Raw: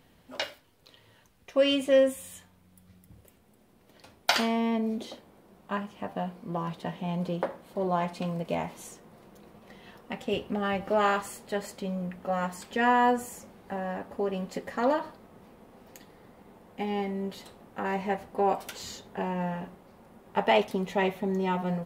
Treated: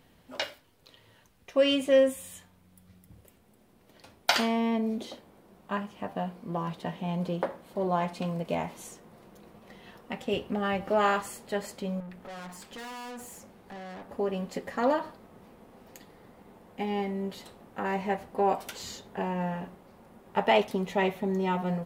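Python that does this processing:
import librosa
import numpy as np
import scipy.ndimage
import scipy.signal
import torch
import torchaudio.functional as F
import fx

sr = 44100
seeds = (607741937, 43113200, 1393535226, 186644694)

y = fx.tube_stage(x, sr, drive_db=40.0, bias=0.45, at=(12.0, 14.09))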